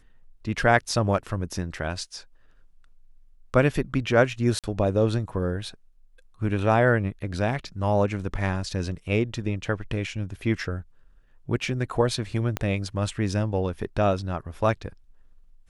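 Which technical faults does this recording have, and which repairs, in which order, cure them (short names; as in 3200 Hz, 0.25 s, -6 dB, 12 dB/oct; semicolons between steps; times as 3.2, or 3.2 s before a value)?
4.59–4.64 gap 47 ms
12.57 pop -12 dBFS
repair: de-click; interpolate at 4.59, 47 ms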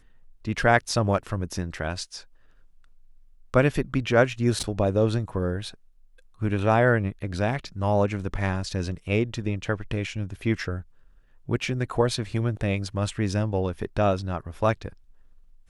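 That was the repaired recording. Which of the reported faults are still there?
12.57 pop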